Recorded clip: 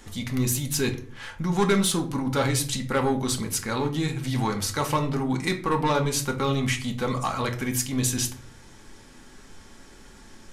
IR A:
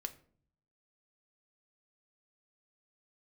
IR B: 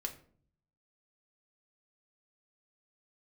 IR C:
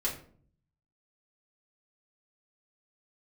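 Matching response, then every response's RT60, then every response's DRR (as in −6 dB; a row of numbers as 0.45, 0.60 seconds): B; 0.50, 0.50, 0.50 seconds; 7.5, 3.0, −5.5 decibels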